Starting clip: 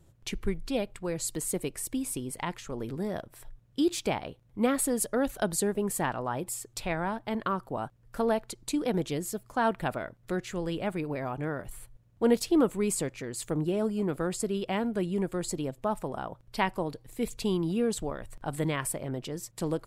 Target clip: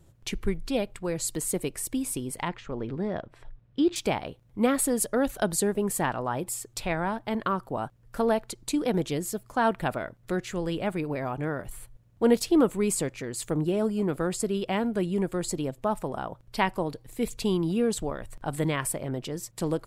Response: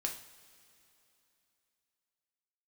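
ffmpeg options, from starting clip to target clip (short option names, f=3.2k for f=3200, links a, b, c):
-filter_complex "[0:a]asettb=1/sr,asplit=3[a][b][c];[a]atrim=end=2.484[d];[b]atrim=start=2.48:end=3.96,asetpts=PTS-STARTPTS,afade=t=in:d=0.004:c=qsin,afade=t=out:st=1.476:d=0.004:c=qsin,lowpass=3.2k[e];[c]atrim=start=3.956[f];[d][e]acrossfade=d=0.004:c1=hsin:c2=qsin[g];[g][f]acrossfade=d=0.004:c1=qsin:c2=hsin,volume=2.5dB"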